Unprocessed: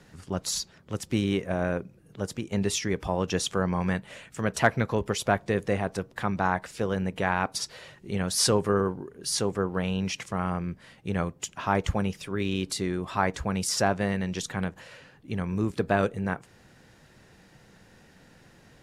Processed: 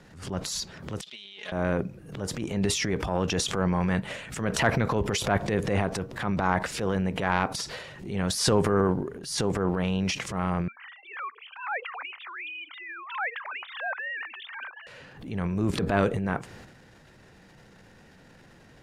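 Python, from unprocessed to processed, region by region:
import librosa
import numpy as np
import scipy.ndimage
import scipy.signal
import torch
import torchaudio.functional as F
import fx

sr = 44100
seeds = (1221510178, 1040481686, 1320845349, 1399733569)

y = fx.chain(x, sr, fx.halfwave_gain(db=-7.0),
    fx.bandpass_q(hz=3500.0, q=5.6),
    fx.comb(ms=4.8, depth=0.67), at=(1.01, 1.52))
y = fx.chain(y, sr, fx.sine_speech(),
    fx.highpass(hz=1000.0, slope=24),
    fx.env_lowpass_down(base_hz=1700.0, full_db=-27.5), at=(10.68, 14.87))
y = fx.transient(y, sr, attack_db=-7, sustain_db=9)
y = fx.high_shelf(y, sr, hz=5500.0, db=-6.0)
y = fx.pre_swell(y, sr, db_per_s=95.0)
y = y * 10.0 ** (1.5 / 20.0)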